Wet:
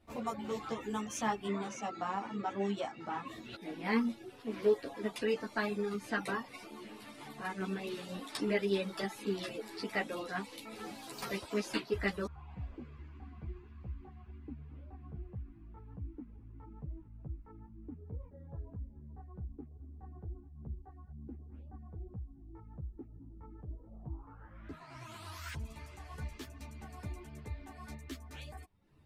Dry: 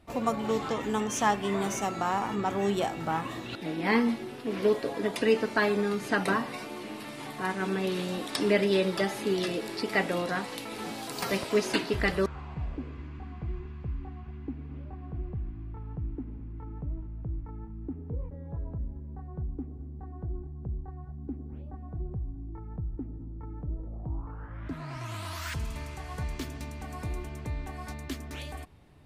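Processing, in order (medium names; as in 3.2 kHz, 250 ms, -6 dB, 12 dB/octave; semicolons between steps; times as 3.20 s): reverb removal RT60 0.65 s; 1.47–3.27 s: band-pass 140–5800 Hz; three-phase chorus; trim -4.5 dB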